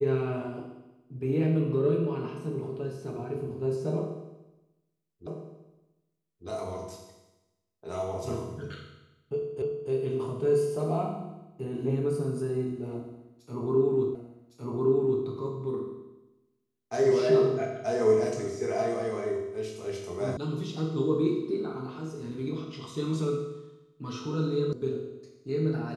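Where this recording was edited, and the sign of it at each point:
5.27 repeat of the last 1.2 s
9.62 repeat of the last 0.29 s
14.15 repeat of the last 1.11 s
20.37 sound cut off
24.73 sound cut off

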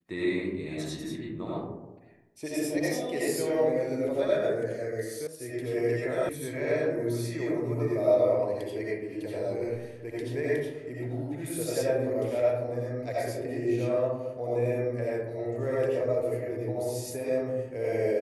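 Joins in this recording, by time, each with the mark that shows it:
5.27 sound cut off
6.29 sound cut off

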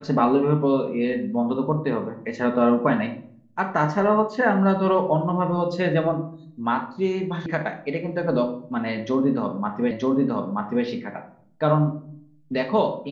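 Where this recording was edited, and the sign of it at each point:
7.46 sound cut off
9.91 repeat of the last 0.93 s

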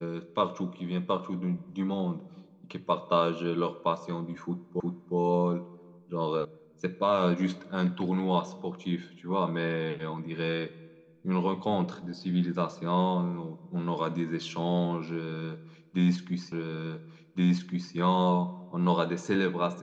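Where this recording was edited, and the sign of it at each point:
4.8 repeat of the last 0.36 s
6.45 sound cut off
16.52 repeat of the last 1.42 s

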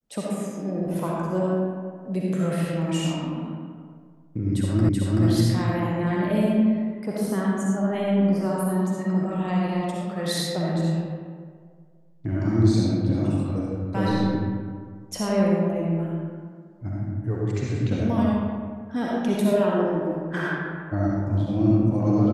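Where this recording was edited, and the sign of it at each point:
4.89 repeat of the last 0.38 s

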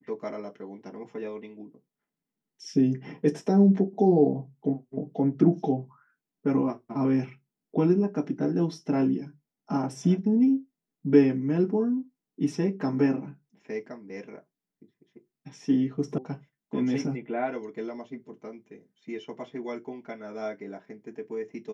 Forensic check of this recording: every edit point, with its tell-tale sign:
16.18 sound cut off

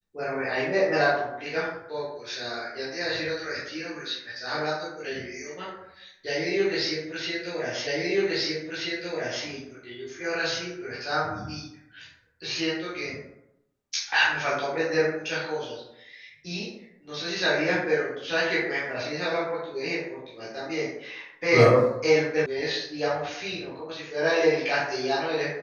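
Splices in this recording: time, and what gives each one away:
7.87 repeat of the last 1.58 s
22.46 sound cut off

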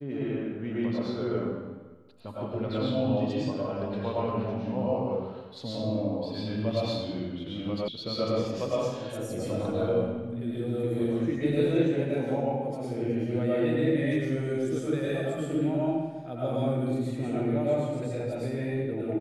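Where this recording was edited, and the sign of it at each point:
7.88 sound cut off

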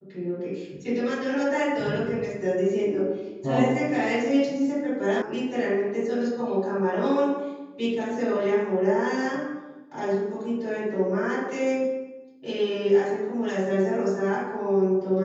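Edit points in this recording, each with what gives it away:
5.22 sound cut off

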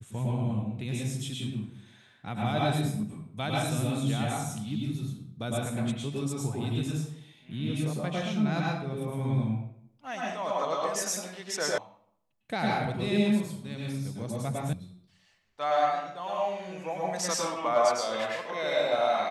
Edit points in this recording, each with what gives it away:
11.78 sound cut off
14.73 sound cut off

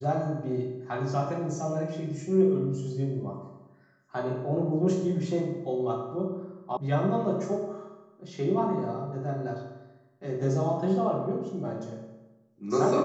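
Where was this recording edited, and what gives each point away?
6.77 sound cut off

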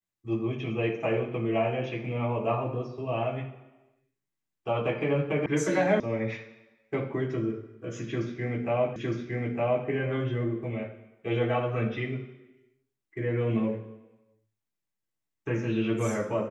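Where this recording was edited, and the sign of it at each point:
5.46 sound cut off
6 sound cut off
8.96 repeat of the last 0.91 s

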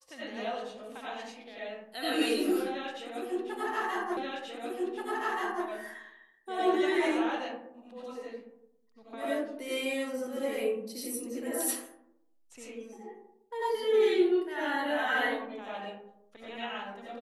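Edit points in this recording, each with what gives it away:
4.17 repeat of the last 1.48 s

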